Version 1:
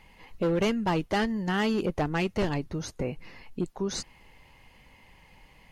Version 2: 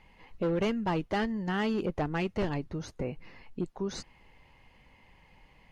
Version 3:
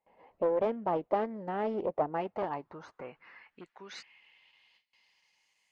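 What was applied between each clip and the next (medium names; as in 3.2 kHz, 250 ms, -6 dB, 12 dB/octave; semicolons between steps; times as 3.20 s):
low-pass 3.5 kHz 6 dB/octave; trim -3 dB
gate with hold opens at -49 dBFS; band-pass sweep 610 Hz -> 7.4 kHz, 2.02–5.67 s; loudspeaker Doppler distortion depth 0.22 ms; trim +6.5 dB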